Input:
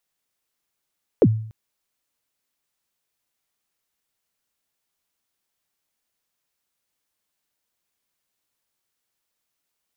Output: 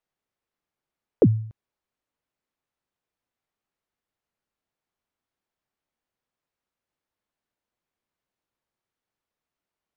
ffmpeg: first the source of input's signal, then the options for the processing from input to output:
-f lavfi -i "aevalsrc='0.398*pow(10,-3*t/0.58)*sin(2*PI*(550*0.052/log(110/550)*(exp(log(110/550)*min(t,0.052)/0.052)-1)+110*max(t-0.052,0)))':d=0.29:s=44100"
-af "lowpass=f=1200:p=1"

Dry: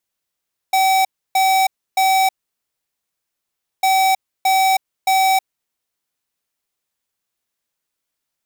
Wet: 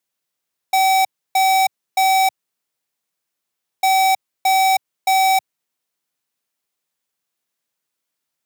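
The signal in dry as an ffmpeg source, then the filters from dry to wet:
-f lavfi -i "aevalsrc='0.188*(2*lt(mod(764*t,1),0.5)-1)*clip(min(mod(mod(t,3.1),0.62),0.32-mod(mod(t,3.1),0.62))/0.005,0,1)*lt(mod(t,3.1),1.86)':d=6.2:s=44100"
-af "highpass=f=110:w=0.5412,highpass=f=110:w=1.3066"

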